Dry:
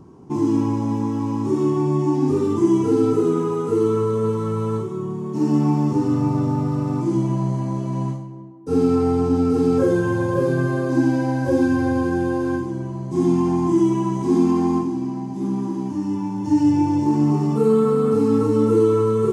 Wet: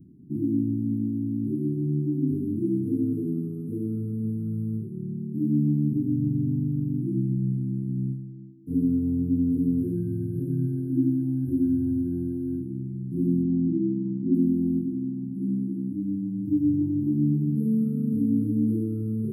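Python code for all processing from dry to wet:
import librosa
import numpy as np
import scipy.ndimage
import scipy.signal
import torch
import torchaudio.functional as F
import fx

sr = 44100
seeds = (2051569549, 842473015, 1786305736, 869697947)

y = fx.chain(x, sr, fx.lowpass(hz=4100.0, slope=24),
    fx.doubler(ms=19.0, db=-6.0), at=(13.43, 14.34))
y = scipy.signal.sosfilt(scipy.signal.cheby2(4, 40, [520.0, 7500.0], 'bandstop', fs=sr, output='sos'), y)
y = fx.low_shelf(y, sr, hz=97.0, db=-10.5)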